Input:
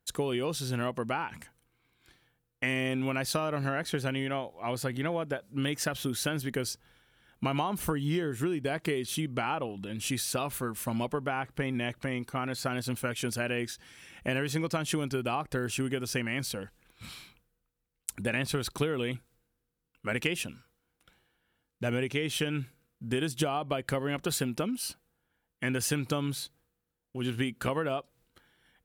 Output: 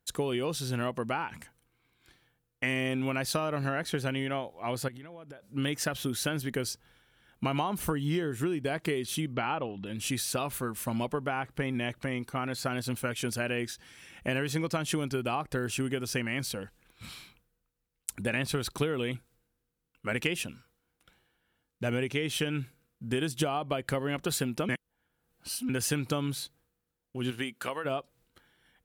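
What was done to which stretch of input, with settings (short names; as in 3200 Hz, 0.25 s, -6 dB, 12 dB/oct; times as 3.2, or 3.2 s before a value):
4.88–5.5 compressor 8:1, threshold -43 dBFS
9.33–9.86 LPF 4600 Hz 24 dB/oct
24.69–25.69 reverse
27.3–27.84 HPF 300 Hz -> 1000 Hz 6 dB/oct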